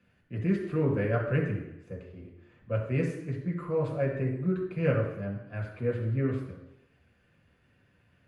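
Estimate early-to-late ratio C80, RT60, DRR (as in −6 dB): 8.0 dB, 0.85 s, −1.5 dB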